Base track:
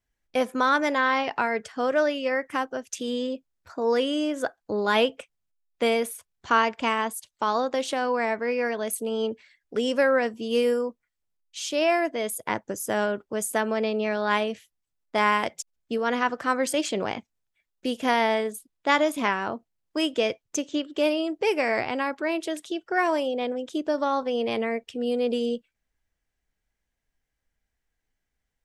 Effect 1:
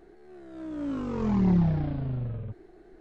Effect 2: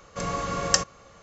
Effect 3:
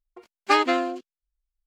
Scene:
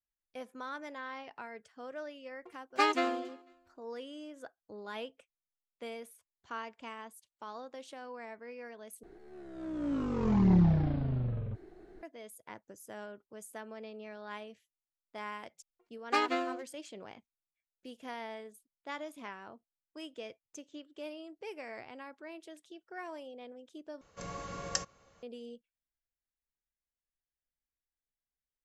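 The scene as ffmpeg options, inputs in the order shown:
-filter_complex "[3:a]asplit=2[a][b];[0:a]volume=-20dB[c];[a]aecho=1:1:248|496:0.075|0.0202[d];[b]agate=range=-17dB:threshold=-39dB:ratio=16:release=100:detection=peak[e];[2:a]bandreject=f=1.2k:w=14[f];[c]asplit=3[g][h][i];[g]atrim=end=9.034[j];[1:a]atrim=end=3,asetpts=PTS-STARTPTS,volume=-1.5dB[k];[h]atrim=start=12.026:end=24.014[l];[f]atrim=end=1.22,asetpts=PTS-STARTPTS,volume=-12.5dB[m];[i]atrim=start=25.226[n];[d]atrim=end=1.66,asetpts=PTS-STARTPTS,volume=-8dB,afade=t=in:d=0.004:c=hsin,afade=t=out:st=1.656:d=0.004:c=hsin,adelay=2290[o];[e]atrim=end=1.66,asetpts=PTS-STARTPTS,volume=-10dB,afade=t=in:d=0.004:c=hsin,afade=t=out:st=1.656:d=0.004:c=hsin,adelay=15630[p];[j][k]acrossfade=d=0.004:c1=hsin:c2=hsin[q];[q][l]acrossfade=d=0.004:c1=hsin:c2=hsin[r];[r][m]acrossfade=d=0.004:c1=hsin:c2=hsin[s];[s][n]acrossfade=d=0.004:c1=hsin:c2=hsin[t];[t][o][p]amix=inputs=3:normalize=0"

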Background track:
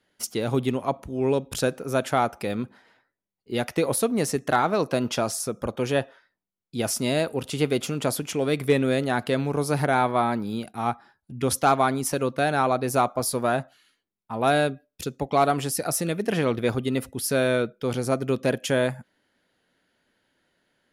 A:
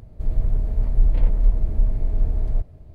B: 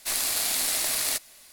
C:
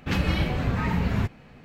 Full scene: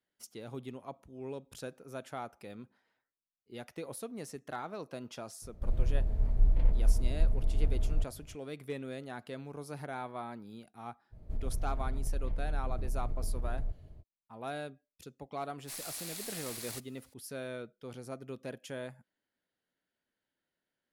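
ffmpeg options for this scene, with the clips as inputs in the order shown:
-filter_complex "[1:a]asplit=2[a][b];[0:a]volume=-18.5dB[c];[b]acompressor=threshold=-21dB:ratio=6:attack=3.2:release=140:knee=1:detection=peak[d];[a]atrim=end=2.94,asetpts=PTS-STARTPTS,volume=-8dB,afade=t=in:d=0.004:c=hsin,afade=t=out:st=2.936:d=0.004:c=hsin,adelay=5420[e];[d]atrim=end=2.94,asetpts=PTS-STARTPTS,volume=-8dB,afade=t=in:d=0.05,afade=t=out:st=2.89:d=0.05,adelay=11100[f];[2:a]atrim=end=1.52,asetpts=PTS-STARTPTS,volume=-16.5dB,afade=t=in:d=0.004:c=hsin,afade=t=out:st=1.516:d=0.004:c=hsin,adelay=15620[g];[c][e][f][g]amix=inputs=4:normalize=0"

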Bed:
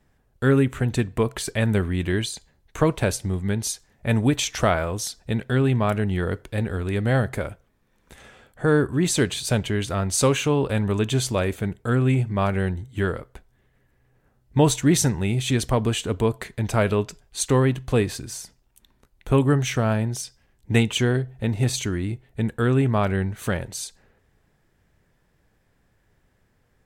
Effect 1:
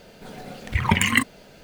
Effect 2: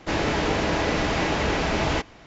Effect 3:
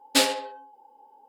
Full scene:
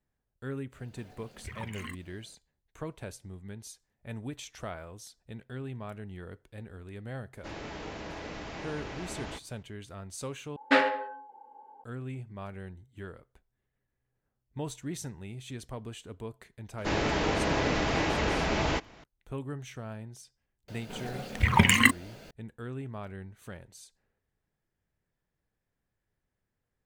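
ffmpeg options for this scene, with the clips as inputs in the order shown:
-filter_complex "[1:a]asplit=2[a][b];[2:a]asplit=2[c][d];[0:a]volume=-19dB[e];[a]alimiter=limit=-13.5dB:level=0:latency=1:release=122[f];[3:a]lowpass=f=1.7k:t=q:w=2.2[g];[e]asplit=2[h][i];[h]atrim=end=10.564[j];[g]atrim=end=1.28,asetpts=PTS-STARTPTS,volume=-0.5dB[k];[i]atrim=start=11.836[l];[f]atrim=end=1.63,asetpts=PTS-STARTPTS,volume=-16.5dB,afade=t=in:d=0.004:c=hsin,afade=t=out:st=1.626:d=0.004:c=hsin,adelay=720[m];[c]atrim=end=2.26,asetpts=PTS-STARTPTS,volume=-17dB,afade=t=in:d=0.004:c=hsin,afade=t=out:st=2.256:d=0.004:c=hsin,adelay=7370[n];[d]atrim=end=2.26,asetpts=PTS-STARTPTS,volume=-4.5dB,afade=t=in:d=0.004:c=hsin,afade=t=out:st=2.256:d=0.004:c=hsin,adelay=16780[o];[b]atrim=end=1.63,asetpts=PTS-STARTPTS,volume=-1dB,afade=t=in:d=0.004:c=hsin,afade=t=out:st=1.626:d=0.004:c=hsin,adelay=911988S[p];[j][k]acrossfade=d=0.004:c1=hsin:c2=hsin[q];[q][l]acrossfade=d=0.004:c1=hsin:c2=hsin[r];[r][m][n][o][p]amix=inputs=5:normalize=0"

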